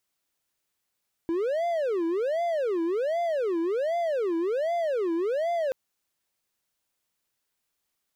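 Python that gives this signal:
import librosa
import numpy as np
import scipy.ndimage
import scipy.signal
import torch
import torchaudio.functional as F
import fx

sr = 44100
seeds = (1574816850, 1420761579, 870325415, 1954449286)

y = fx.siren(sr, length_s=4.43, kind='wail', low_hz=329.0, high_hz=692.0, per_s=1.3, wave='triangle', level_db=-22.0)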